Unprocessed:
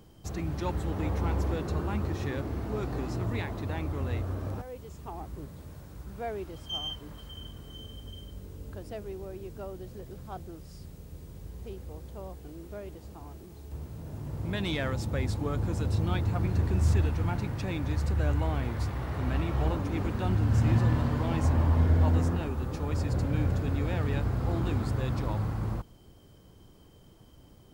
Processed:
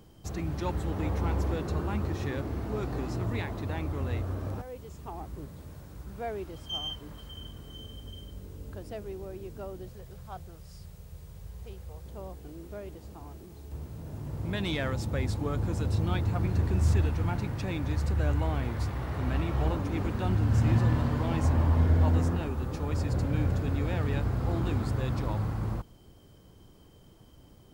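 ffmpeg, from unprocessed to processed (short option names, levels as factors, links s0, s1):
-filter_complex "[0:a]asettb=1/sr,asplit=3[s0][s1][s2];[s0]atrim=end=9.894[s3];[s1]atrim=start=9.89:end=12.06,asetpts=PTS-STARTPTS,afade=t=in:d=0.004:c=qsin,afade=t=out:st=2.166:d=0.004:c=qsin,equalizer=f=290:t=o:w=0.77:g=-15[s4];[s2]atrim=start=12.056[s5];[s3][s4]acrossfade=d=0.004:c1=hsin:c2=qsin[s6];[s6][s5]acrossfade=d=0.004:c1=qsin:c2=hsin"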